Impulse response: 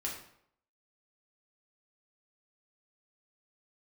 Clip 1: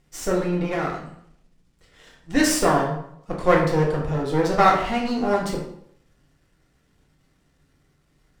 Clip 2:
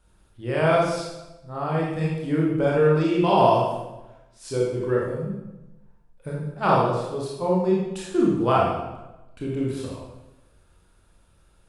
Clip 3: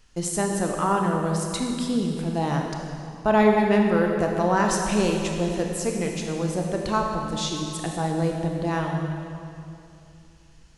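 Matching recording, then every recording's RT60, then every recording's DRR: 1; 0.70, 1.0, 2.7 s; -3.5, -4.5, 1.0 dB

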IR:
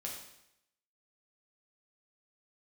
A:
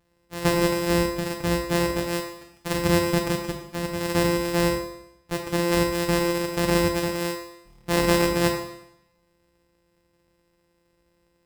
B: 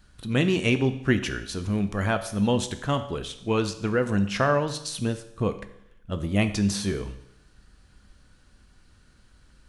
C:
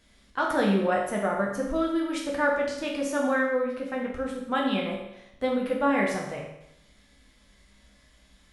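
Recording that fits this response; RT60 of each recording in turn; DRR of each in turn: C; 0.80, 0.80, 0.80 s; 1.5, 9.0, -2.5 dB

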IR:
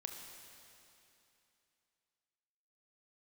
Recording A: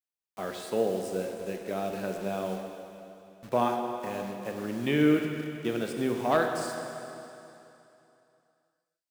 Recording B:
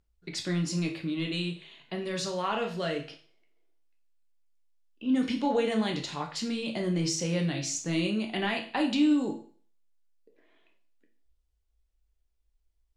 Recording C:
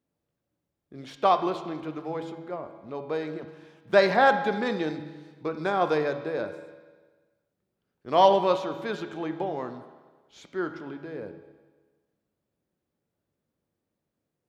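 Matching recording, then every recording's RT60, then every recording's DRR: A; 2.9, 0.45, 1.4 s; 3.0, 2.0, 8.0 dB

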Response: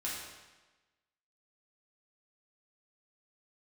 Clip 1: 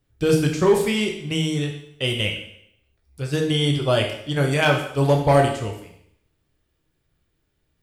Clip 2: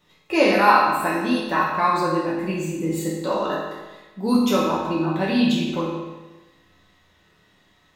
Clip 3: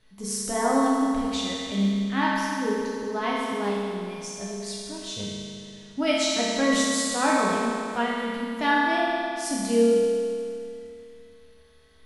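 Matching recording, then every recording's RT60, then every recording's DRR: 2; 0.75, 1.2, 2.6 s; 2.0, -7.0, -6.5 dB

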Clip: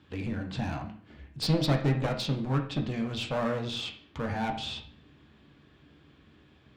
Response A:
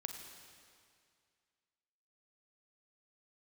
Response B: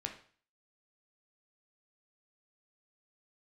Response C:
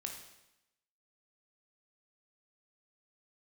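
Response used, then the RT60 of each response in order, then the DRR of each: B; 2.2, 0.45, 0.90 s; 4.0, 3.0, 2.0 dB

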